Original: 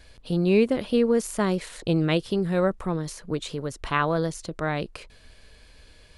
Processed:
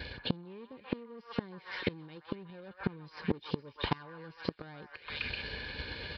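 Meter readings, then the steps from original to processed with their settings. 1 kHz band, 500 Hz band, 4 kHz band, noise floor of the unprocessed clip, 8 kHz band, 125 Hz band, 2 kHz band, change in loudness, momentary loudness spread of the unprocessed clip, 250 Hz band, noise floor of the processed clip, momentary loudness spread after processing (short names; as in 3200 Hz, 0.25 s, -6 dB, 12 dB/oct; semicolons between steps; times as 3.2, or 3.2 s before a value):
-13.0 dB, -17.5 dB, -4.0 dB, -53 dBFS, under -35 dB, -13.0 dB, -7.0 dB, -14.0 dB, 10 LU, -14.0 dB, -60 dBFS, 12 LU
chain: nonlinear frequency compression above 3900 Hz 1.5:1; HPF 60 Hz 12 dB/oct; notch 1100 Hz, Q 7; transient shaper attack +11 dB, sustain -3 dB; reverse; compressor 20:1, threshold -27 dBFS, peak gain reduction 19.5 dB; reverse; soft clip -30.5 dBFS, distortion -10 dB; notch comb 660 Hz; on a send: delay with a stepping band-pass 0.127 s, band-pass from 1200 Hz, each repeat 0.7 oct, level 0 dB; on the sum: downsampling 11025 Hz; flipped gate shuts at -31 dBFS, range -26 dB; gain +13.5 dB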